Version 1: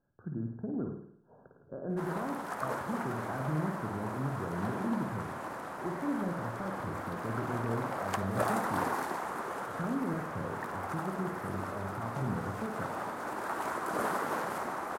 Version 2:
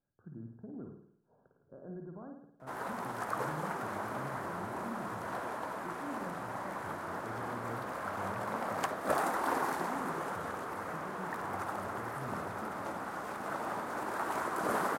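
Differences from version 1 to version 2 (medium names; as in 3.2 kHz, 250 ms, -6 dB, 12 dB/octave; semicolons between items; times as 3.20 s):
speech -10.0 dB; background: entry +0.70 s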